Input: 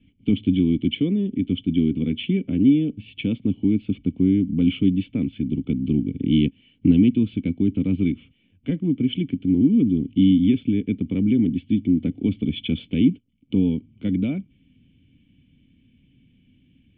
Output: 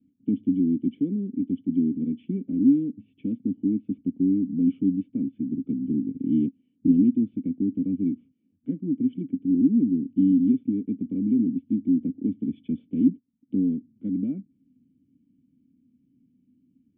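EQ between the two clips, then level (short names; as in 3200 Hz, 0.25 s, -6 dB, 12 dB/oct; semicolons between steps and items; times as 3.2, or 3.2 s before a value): band-pass 260 Hz, Q 2.6; -1.5 dB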